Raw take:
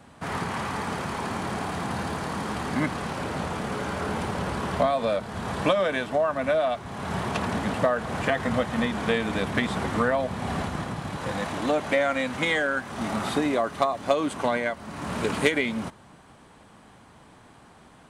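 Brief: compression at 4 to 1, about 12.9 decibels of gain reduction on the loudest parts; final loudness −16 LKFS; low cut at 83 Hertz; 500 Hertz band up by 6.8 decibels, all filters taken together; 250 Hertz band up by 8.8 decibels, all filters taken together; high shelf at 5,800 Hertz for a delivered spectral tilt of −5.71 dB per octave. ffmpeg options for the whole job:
ffmpeg -i in.wav -af "highpass=83,equalizer=frequency=250:width_type=o:gain=9,equalizer=frequency=500:width_type=o:gain=6.5,highshelf=frequency=5800:gain=-6.5,acompressor=threshold=-28dB:ratio=4,volume=14.5dB" out.wav

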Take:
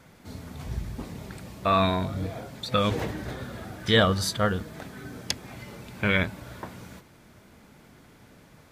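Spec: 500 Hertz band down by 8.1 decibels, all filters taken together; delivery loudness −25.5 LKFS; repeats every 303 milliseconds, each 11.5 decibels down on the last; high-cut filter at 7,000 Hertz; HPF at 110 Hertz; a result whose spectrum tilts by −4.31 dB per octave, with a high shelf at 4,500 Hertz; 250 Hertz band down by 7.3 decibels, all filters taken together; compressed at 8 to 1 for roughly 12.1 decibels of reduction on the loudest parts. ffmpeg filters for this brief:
ffmpeg -i in.wav -af "highpass=110,lowpass=7000,equalizer=frequency=250:width_type=o:gain=-8,equalizer=frequency=500:width_type=o:gain=-8.5,highshelf=frequency=4500:gain=-4.5,acompressor=threshold=-33dB:ratio=8,aecho=1:1:303|606|909:0.266|0.0718|0.0194,volume=14.5dB" out.wav

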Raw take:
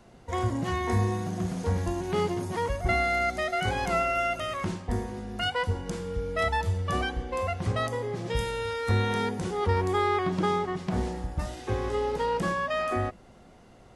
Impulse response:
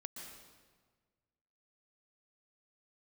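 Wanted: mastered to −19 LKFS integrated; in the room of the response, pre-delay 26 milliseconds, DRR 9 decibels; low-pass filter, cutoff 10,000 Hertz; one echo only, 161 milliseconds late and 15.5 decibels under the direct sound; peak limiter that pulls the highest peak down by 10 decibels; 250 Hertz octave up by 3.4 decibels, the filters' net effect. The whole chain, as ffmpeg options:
-filter_complex "[0:a]lowpass=10000,equalizer=frequency=250:width_type=o:gain=5,alimiter=limit=-22.5dB:level=0:latency=1,aecho=1:1:161:0.168,asplit=2[link_01][link_02];[1:a]atrim=start_sample=2205,adelay=26[link_03];[link_02][link_03]afir=irnorm=-1:irlink=0,volume=-5.5dB[link_04];[link_01][link_04]amix=inputs=2:normalize=0,volume=12dB"

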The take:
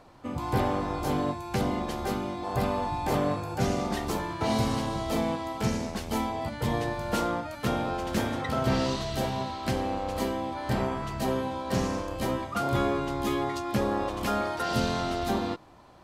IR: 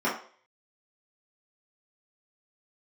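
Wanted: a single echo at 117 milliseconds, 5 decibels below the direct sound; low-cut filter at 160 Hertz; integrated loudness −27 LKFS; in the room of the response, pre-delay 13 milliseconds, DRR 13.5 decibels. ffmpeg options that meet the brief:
-filter_complex "[0:a]highpass=160,aecho=1:1:117:0.562,asplit=2[link_01][link_02];[1:a]atrim=start_sample=2205,adelay=13[link_03];[link_02][link_03]afir=irnorm=-1:irlink=0,volume=-26.5dB[link_04];[link_01][link_04]amix=inputs=2:normalize=0,volume=2.5dB"

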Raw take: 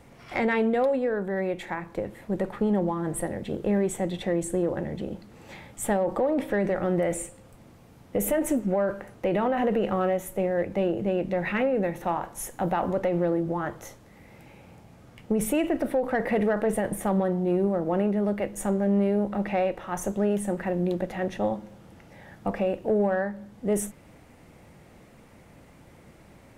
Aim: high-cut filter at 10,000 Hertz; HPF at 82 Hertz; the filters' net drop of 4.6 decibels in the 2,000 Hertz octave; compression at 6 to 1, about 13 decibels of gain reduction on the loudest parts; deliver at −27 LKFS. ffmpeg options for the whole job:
ffmpeg -i in.wav -af "highpass=82,lowpass=10000,equalizer=frequency=2000:width_type=o:gain=-5.5,acompressor=threshold=-35dB:ratio=6,volume=12dB" out.wav

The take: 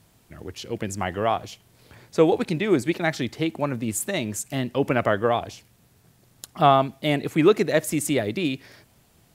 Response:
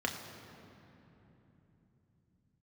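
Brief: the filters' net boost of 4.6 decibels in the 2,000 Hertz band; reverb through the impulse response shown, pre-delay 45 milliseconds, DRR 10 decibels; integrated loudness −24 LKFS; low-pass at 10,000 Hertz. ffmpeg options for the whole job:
-filter_complex "[0:a]lowpass=10000,equalizer=frequency=2000:width_type=o:gain=5.5,asplit=2[link_01][link_02];[1:a]atrim=start_sample=2205,adelay=45[link_03];[link_02][link_03]afir=irnorm=-1:irlink=0,volume=-16dB[link_04];[link_01][link_04]amix=inputs=2:normalize=0,volume=-1.5dB"

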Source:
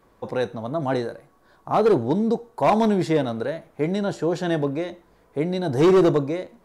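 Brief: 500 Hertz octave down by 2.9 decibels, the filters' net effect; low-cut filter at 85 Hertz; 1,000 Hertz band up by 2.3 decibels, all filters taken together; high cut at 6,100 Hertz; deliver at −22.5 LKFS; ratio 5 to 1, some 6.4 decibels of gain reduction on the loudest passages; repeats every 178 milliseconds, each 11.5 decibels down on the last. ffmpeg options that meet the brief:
ffmpeg -i in.wav -af "highpass=85,lowpass=6100,equalizer=frequency=500:width_type=o:gain=-5,equalizer=frequency=1000:width_type=o:gain=5,acompressor=threshold=-21dB:ratio=5,aecho=1:1:178|356|534:0.266|0.0718|0.0194,volume=4.5dB" out.wav

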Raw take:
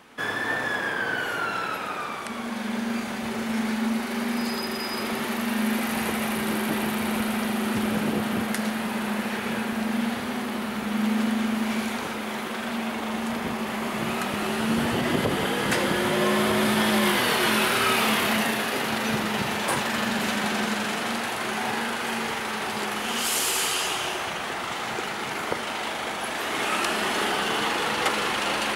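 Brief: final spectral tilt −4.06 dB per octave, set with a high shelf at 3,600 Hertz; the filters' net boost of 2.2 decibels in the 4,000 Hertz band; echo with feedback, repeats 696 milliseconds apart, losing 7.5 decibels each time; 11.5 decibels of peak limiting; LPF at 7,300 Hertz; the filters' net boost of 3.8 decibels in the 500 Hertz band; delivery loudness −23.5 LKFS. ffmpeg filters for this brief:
ffmpeg -i in.wav -af "lowpass=7300,equalizer=frequency=500:width_type=o:gain=5,highshelf=frequency=3600:gain=-6,equalizer=frequency=4000:width_type=o:gain=7,alimiter=limit=-19.5dB:level=0:latency=1,aecho=1:1:696|1392|2088|2784|3480:0.422|0.177|0.0744|0.0312|0.0131,volume=4dB" out.wav

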